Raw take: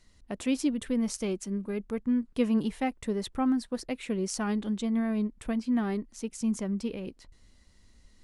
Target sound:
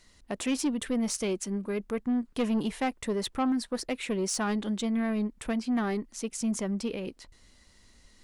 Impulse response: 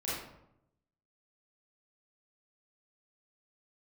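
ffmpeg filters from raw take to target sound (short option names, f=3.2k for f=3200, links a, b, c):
-af "lowshelf=f=280:g=-8,asoftclip=type=tanh:threshold=-28dB,volume=6dB"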